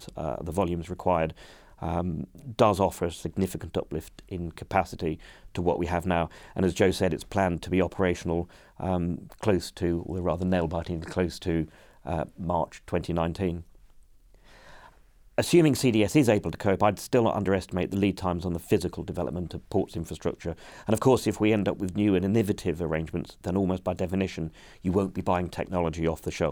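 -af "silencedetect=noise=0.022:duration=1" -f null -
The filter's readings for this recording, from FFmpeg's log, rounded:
silence_start: 13.61
silence_end: 15.38 | silence_duration: 1.78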